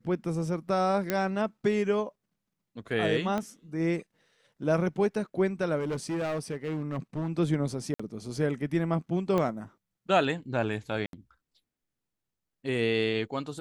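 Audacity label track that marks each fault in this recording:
1.100000	1.100000	click −12 dBFS
3.380000	3.380000	click −18 dBFS
5.780000	7.300000	clipping −27.5 dBFS
7.940000	8.000000	drop-out 55 ms
9.380000	9.380000	click −16 dBFS
11.060000	11.130000	drop-out 72 ms

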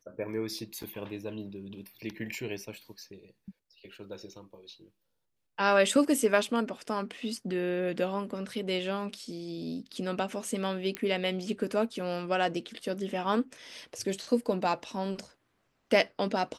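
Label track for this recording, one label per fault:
0.830000	0.830000	drop-out 5 ms
10.950000	10.950000	click −16 dBFS

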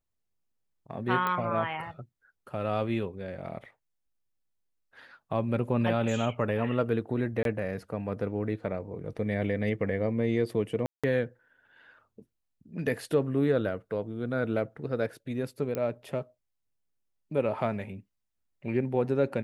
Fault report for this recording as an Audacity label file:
1.270000	1.270000	click −17 dBFS
7.430000	7.450000	drop-out 22 ms
10.860000	11.040000	drop-out 176 ms
15.750000	15.750000	click −18 dBFS

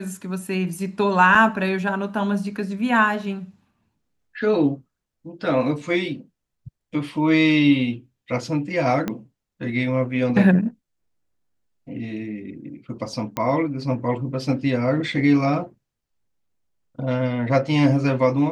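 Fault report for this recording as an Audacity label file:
1.350000	1.350000	drop-out 3.1 ms
9.080000	9.080000	click −12 dBFS
13.370000	13.370000	click −11 dBFS

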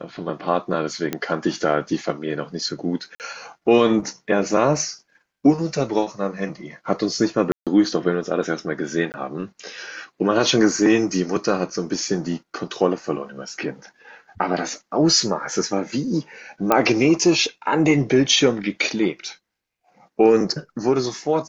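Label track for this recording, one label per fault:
1.130000	1.130000	click −9 dBFS
3.150000	3.200000	drop-out 48 ms
7.520000	7.670000	drop-out 147 ms
9.120000	9.140000	drop-out 19 ms
16.720000	16.720000	click −3 dBFS

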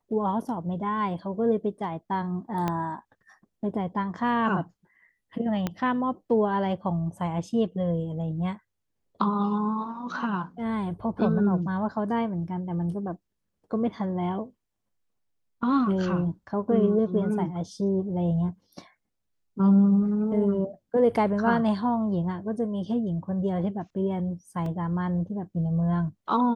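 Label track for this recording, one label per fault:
2.680000	2.680000	click −14 dBFS
5.670000	5.670000	click −14 dBFS
24.660000	24.660000	drop-out 2.6 ms

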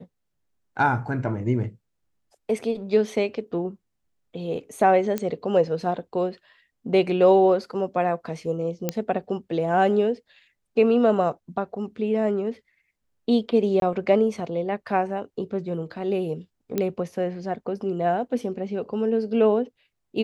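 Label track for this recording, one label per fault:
5.180000	5.180000	click −13 dBFS
8.890000	8.890000	click −9 dBFS
13.800000	13.820000	drop-out 22 ms
16.780000	16.780000	click −11 dBFS

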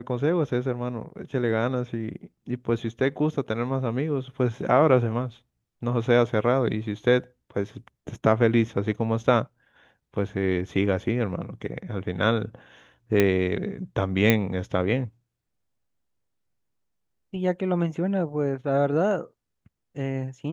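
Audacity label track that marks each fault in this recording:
13.200000	13.200000	click −7 dBFS
14.300000	14.300000	click −5 dBFS

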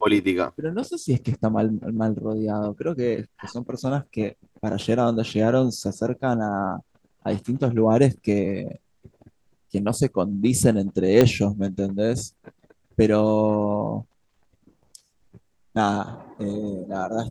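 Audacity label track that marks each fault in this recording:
11.210000	11.210000	click −4 dBFS

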